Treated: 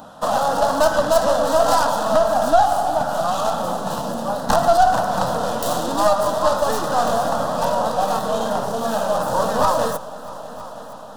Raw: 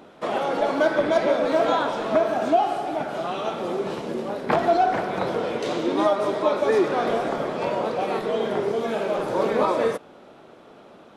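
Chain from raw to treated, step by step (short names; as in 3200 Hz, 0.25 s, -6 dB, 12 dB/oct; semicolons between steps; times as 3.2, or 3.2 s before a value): tracing distortion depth 0.24 ms; high shelf 7400 Hz +7 dB; notches 50/100/150 Hz; in parallel at -3 dB: compressor, threshold -28 dBFS, peak gain reduction 13.5 dB; on the sum: soft clip -11 dBFS, distortion -20 dB; fixed phaser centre 920 Hz, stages 4; on a send: multi-head echo 0.321 s, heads all three, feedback 56%, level -22 dB; on the sum: gain +6.5 dB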